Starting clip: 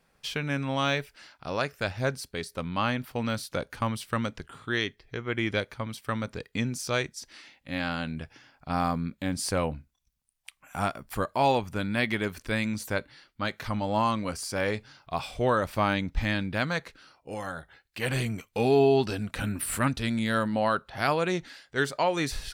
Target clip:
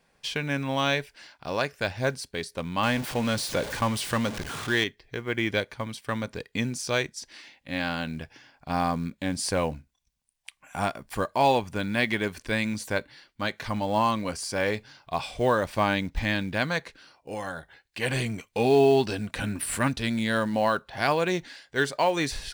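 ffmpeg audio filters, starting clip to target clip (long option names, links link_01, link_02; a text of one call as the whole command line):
ffmpeg -i in.wav -filter_complex "[0:a]asettb=1/sr,asplit=3[link_01][link_02][link_03];[link_01]atrim=end=2.834[link_04];[link_02]atrim=start=2.83:end=4.84,asetpts=PTS-STARTPTS,afade=type=in:duration=0.004:curve=qsin,afade=type=out:start_time=2.006:duration=0.004:curve=qsin,aeval=exprs='val(0)+0.5*0.0266*sgn(val(0))':channel_layout=same[link_05];[link_03]atrim=start=4.836[link_06];[link_04][link_05]acrossfade=duration=0.004:curve1=hsin:curve2=qsin[link_07];[link_07][link_06]acrossfade=duration=0.004:curve1=qsin:curve2=hsin,lowshelf=frequency=180:gain=-4.5,bandreject=frequency=1300:width=8.3,acrusher=bits=7:mode=log:mix=0:aa=0.000001,equalizer=frequency=13000:width_type=o:width=0.26:gain=-12.5,volume=2.5dB" out.wav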